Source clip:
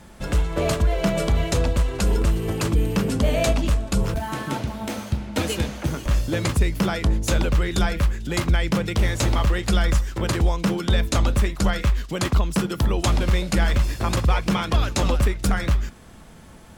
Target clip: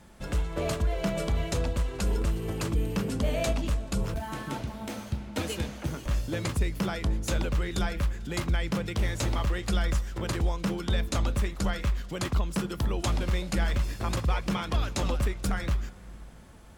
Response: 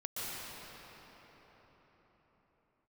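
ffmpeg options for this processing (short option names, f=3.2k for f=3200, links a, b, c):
-filter_complex "[0:a]asplit=2[a][b];[1:a]atrim=start_sample=2205,adelay=146[c];[b][c]afir=irnorm=-1:irlink=0,volume=-25.5dB[d];[a][d]amix=inputs=2:normalize=0,volume=-7.5dB"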